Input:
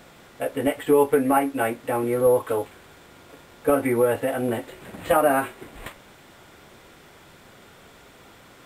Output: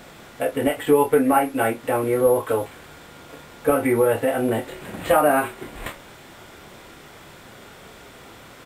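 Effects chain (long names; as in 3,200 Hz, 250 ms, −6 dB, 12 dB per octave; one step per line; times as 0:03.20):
double-tracking delay 27 ms −7 dB
in parallel at −3 dB: downward compressor, threshold −28 dBFS, peak gain reduction 14.5 dB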